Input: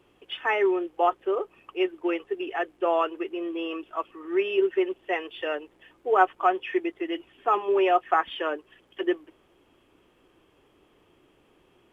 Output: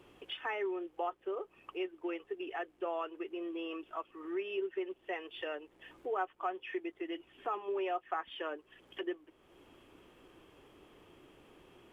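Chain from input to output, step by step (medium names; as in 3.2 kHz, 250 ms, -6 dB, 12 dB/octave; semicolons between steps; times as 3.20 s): compression 2:1, threshold -49 dBFS, peak gain reduction 19 dB; trim +2 dB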